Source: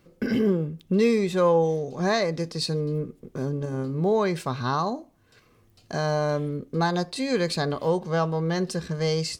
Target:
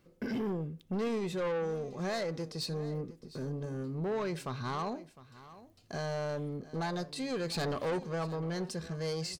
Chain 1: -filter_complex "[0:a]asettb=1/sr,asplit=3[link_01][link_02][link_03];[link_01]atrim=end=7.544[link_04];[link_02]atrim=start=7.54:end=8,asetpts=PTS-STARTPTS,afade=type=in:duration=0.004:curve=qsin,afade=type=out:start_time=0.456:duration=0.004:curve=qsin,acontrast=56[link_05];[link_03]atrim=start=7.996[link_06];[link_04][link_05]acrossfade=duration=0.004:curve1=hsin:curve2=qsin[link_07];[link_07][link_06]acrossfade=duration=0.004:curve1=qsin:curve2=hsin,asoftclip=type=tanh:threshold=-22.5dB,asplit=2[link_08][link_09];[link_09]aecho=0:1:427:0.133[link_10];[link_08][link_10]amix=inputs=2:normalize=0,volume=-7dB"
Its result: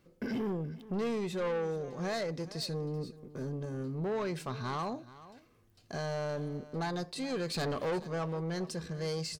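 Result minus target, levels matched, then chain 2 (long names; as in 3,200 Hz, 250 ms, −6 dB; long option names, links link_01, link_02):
echo 280 ms early
-filter_complex "[0:a]asettb=1/sr,asplit=3[link_01][link_02][link_03];[link_01]atrim=end=7.544[link_04];[link_02]atrim=start=7.54:end=8,asetpts=PTS-STARTPTS,afade=type=in:duration=0.004:curve=qsin,afade=type=out:start_time=0.456:duration=0.004:curve=qsin,acontrast=56[link_05];[link_03]atrim=start=7.996[link_06];[link_04][link_05]acrossfade=duration=0.004:curve1=hsin:curve2=qsin[link_07];[link_07][link_06]acrossfade=duration=0.004:curve1=qsin:curve2=hsin,asoftclip=type=tanh:threshold=-22.5dB,asplit=2[link_08][link_09];[link_09]aecho=0:1:707:0.133[link_10];[link_08][link_10]amix=inputs=2:normalize=0,volume=-7dB"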